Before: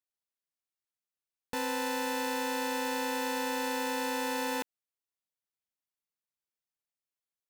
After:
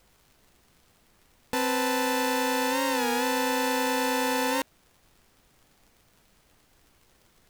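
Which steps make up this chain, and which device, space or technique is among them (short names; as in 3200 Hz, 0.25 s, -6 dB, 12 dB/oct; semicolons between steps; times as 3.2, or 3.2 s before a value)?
warped LP (record warp 33 1/3 rpm, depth 100 cents; crackle; pink noise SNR 33 dB); gain +6.5 dB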